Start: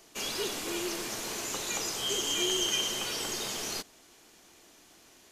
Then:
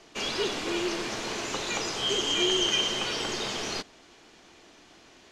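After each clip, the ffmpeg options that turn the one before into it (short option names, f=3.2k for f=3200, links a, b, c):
-af "lowpass=4.5k,volume=5.5dB"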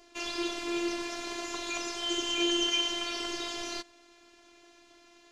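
-af "afftfilt=real='hypot(re,im)*cos(PI*b)':imag='0':win_size=512:overlap=0.75,volume=-1dB"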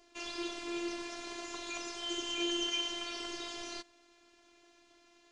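-af "aresample=22050,aresample=44100,volume=-6dB"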